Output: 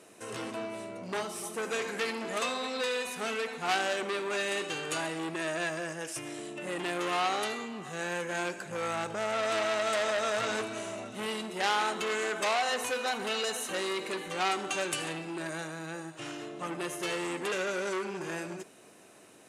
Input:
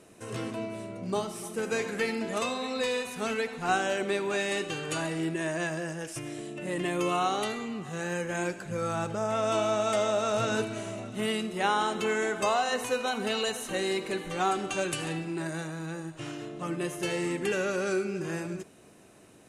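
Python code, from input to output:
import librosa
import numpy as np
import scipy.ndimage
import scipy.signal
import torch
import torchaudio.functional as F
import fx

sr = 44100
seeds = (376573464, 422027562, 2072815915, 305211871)

y = fx.highpass(x, sr, hz=410.0, slope=6)
y = fx.transformer_sat(y, sr, knee_hz=3600.0)
y = y * librosa.db_to_amplitude(2.5)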